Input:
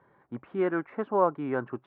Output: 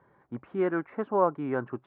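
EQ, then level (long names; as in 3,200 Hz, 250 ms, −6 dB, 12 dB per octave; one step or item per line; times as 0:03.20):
high-frequency loss of the air 110 metres
low-shelf EQ 71 Hz +6 dB
0.0 dB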